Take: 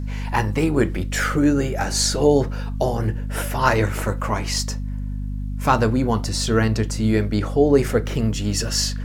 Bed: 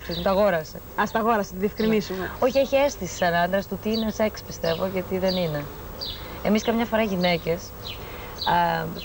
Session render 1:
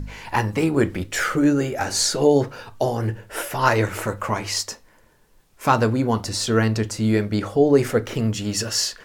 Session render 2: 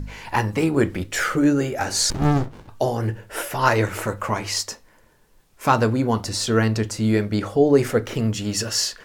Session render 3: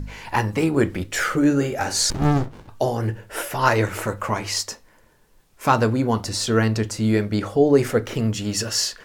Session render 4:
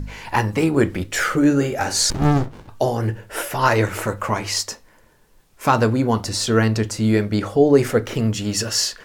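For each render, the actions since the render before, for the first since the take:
de-hum 50 Hz, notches 5
2.1–2.69 running maximum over 65 samples
1.45–1.93 doubler 50 ms -11.5 dB
gain +2 dB; limiter -3 dBFS, peak gain reduction 2.5 dB

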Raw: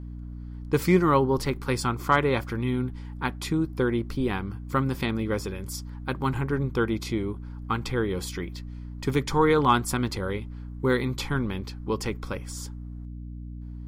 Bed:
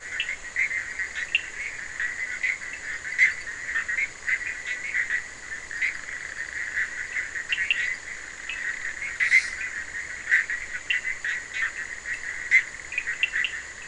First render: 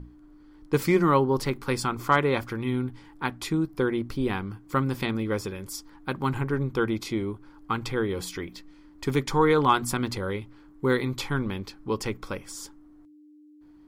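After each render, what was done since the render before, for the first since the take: notches 60/120/180/240 Hz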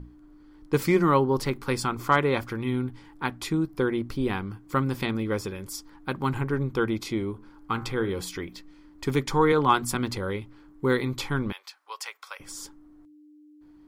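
7.31–8.11 de-hum 71.64 Hz, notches 32; 9.52–9.95 three-band expander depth 40%; 11.52–12.4 Bessel high-pass 1100 Hz, order 6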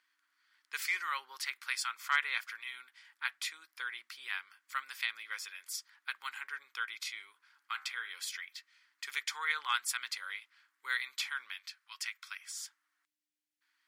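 Chebyshev high-pass 1700 Hz, order 3; high shelf 8500 Hz -6 dB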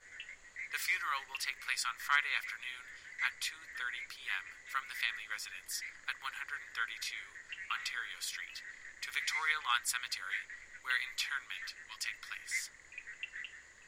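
add bed -19.5 dB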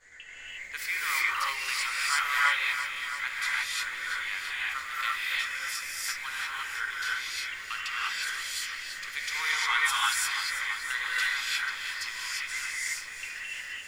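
non-linear reverb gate 0.38 s rising, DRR -7 dB; lo-fi delay 0.337 s, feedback 80%, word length 9-bit, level -12 dB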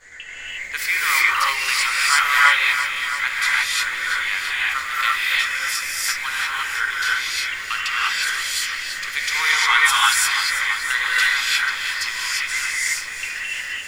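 gain +10.5 dB

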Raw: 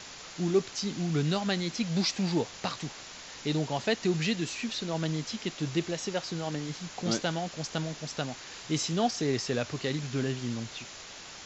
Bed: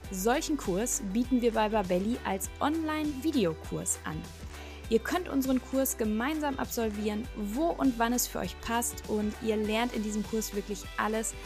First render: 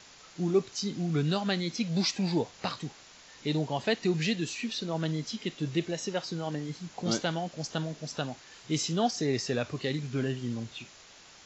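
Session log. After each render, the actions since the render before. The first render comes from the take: noise print and reduce 8 dB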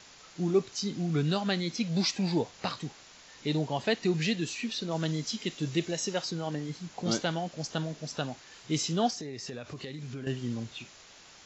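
4.91–6.31 high shelf 6000 Hz +10 dB; 9.13–10.27 compressor, threshold -36 dBFS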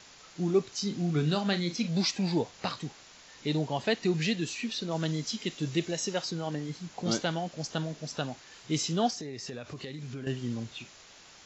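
0.77–1.91 doubler 40 ms -10.5 dB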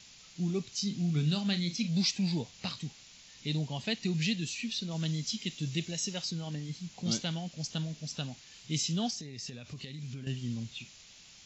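band shelf 730 Hz -11 dB 2.9 oct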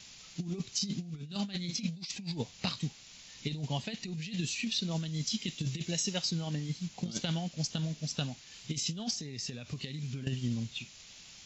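negative-ratio compressor -34 dBFS, ratio -0.5; transient shaper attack +3 dB, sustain -2 dB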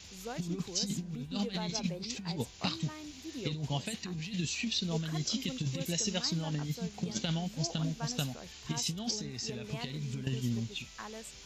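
add bed -15 dB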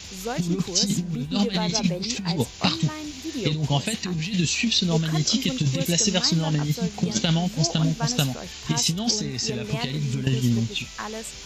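gain +11.5 dB

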